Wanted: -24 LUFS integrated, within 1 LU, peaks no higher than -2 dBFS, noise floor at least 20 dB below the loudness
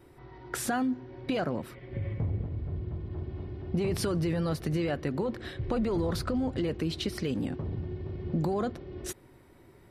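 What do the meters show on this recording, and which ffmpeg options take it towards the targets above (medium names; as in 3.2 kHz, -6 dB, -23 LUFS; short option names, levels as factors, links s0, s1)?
loudness -32.5 LUFS; peak level -17.5 dBFS; loudness target -24.0 LUFS
-> -af "volume=2.66"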